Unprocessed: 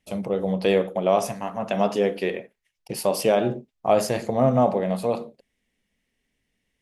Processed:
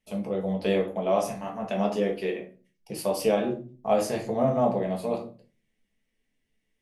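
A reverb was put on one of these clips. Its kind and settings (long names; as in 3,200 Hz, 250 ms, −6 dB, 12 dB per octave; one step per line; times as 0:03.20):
rectangular room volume 160 cubic metres, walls furnished, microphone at 1.5 metres
level −7.5 dB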